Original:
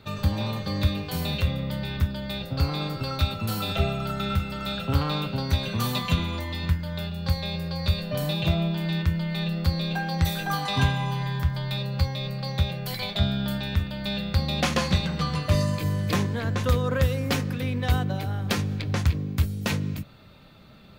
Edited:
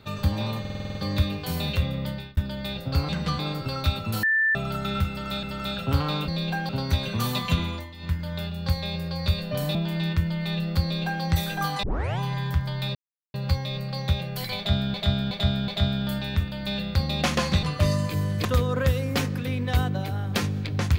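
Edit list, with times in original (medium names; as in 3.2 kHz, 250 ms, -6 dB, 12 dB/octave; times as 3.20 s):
0.60 s: stutter 0.05 s, 8 plays
1.73–2.02 s: fade out
3.58–3.90 s: bleep 1.77 kHz -18.5 dBFS
4.44–4.78 s: loop, 2 plays
6.28–6.81 s: dip -12 dB, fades 0.24 s
8.35–8.64 s: delete
9.71–10.12 s: copy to 5.29 s
10.72 s: tape start 0.36 s
11.84 s: insert silence 0.39 s
13.07–13.44 s: loop, 4 plays
15.02–15.32 s: move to 2.74 s
16.14–16.60 s: delete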